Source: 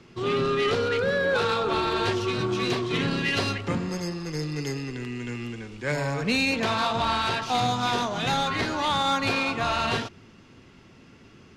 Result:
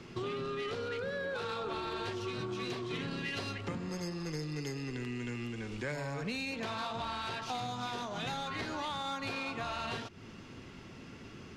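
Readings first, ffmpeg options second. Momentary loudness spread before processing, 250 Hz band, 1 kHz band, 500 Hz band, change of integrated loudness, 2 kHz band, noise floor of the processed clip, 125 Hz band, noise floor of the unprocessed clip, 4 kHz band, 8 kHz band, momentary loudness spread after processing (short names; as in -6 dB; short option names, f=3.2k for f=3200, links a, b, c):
8 LU, -10.5 dB, -12.5 dB, -12.0 dB, -12.0 dB, -12.0 dB, -50 dBFS, -10.0 dB, -52 dBFS, -12.5 dB, -11.0 dB, 10 LU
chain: -af "acompressor=threshold=-38dB:ratio=6,volume=2dB"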